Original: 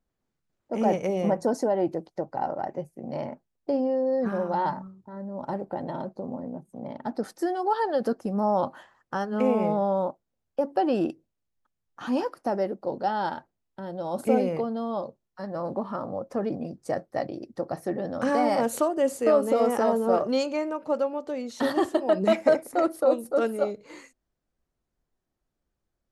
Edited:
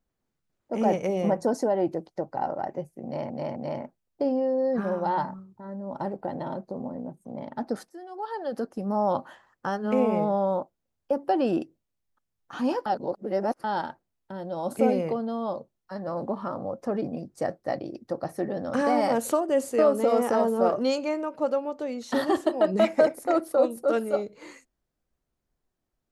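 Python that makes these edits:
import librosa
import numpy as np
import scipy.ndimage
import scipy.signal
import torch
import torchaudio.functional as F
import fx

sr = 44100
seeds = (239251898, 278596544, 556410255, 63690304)

y = fx.edit(x, sr, fx.repeat(start_s=3.04, length_s=0.26, count=3),
    fx.fade_in_from(start_s=7.37, length_s=1.27, floor_db=-20.5),
    fx.reverse_span(start_s=12.34, length_s=0.78), tone=tone)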